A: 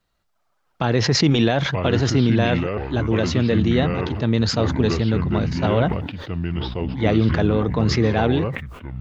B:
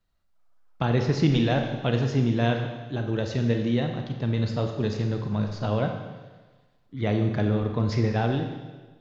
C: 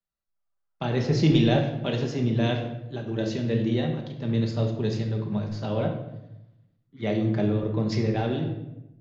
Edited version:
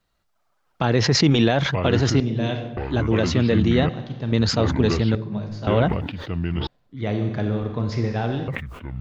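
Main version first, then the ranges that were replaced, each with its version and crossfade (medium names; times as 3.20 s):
A
2.20–2.77 s: from C
3.89–4.32 s: from B
5.15–5.67 s: from C
6.67–8.48 s: from B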